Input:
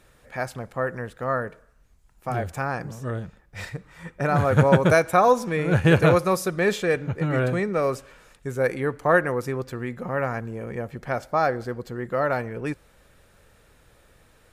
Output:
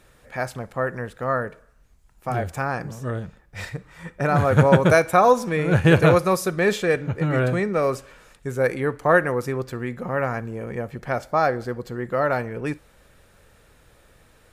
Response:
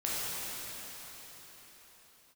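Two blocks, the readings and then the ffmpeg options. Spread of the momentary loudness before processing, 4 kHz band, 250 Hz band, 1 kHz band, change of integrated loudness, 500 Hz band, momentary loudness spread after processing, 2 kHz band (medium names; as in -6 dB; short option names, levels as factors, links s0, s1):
18 LU, +2.0 dB, +2.0 dB, +2.0 dB, +2.0 dB, +2.0 dB, 18 LU, +2.0 dB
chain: -filter_complex "[0:a]asplit=2[s0][s1];[1:a]atrim=start_sample=2205,atrim=end_sample=3087[s2];[s1][s2]afir=irnorm=-1:irlink=0,volume=0.112[s3];[s0][s3]amix=inputs=2:normalize=0,volume=1.12"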